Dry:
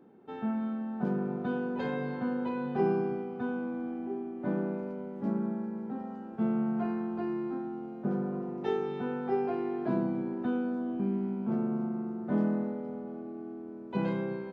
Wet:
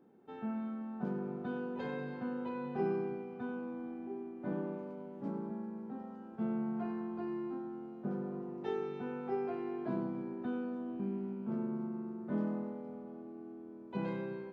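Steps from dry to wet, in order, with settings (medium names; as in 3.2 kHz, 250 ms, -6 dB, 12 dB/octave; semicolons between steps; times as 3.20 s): 4.51–5.50 s: comb 6.9 ms, depth 52%; 11.32–12.51 s: band-stop 730 Hz, Q 12; thinning echo 95 ms, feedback 61%, level -11 dB; trim -6.5 dB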